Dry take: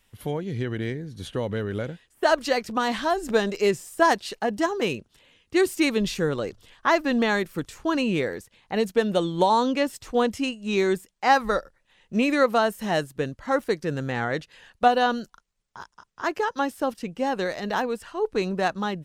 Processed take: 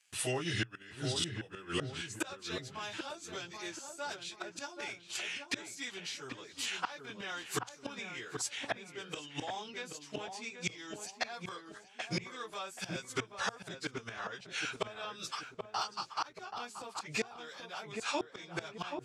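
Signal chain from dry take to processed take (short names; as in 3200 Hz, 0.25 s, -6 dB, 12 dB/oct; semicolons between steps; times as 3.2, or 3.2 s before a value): pitch shift by moving bins -2.5 st; AGC gain up to 6.5 dB; in parallel at -10.5 dB: soft clip -17 dBFS, distortion -10 dB; on the sum: gate with hold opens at -43 dBFS; weighting filter ITU-R 468; flipped gate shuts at -19 dBFS, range -32 dB; compressor 2.5:1, threshold -47 dBFS, peak gain reduction 14 dB; bell 120 Hz +11 dB 0.25 oct; on a send: darkening echo 0.781 s, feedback 39%, low-pass 1200 Hz, level -4.5 dB; on the sum: gain +9.5 dB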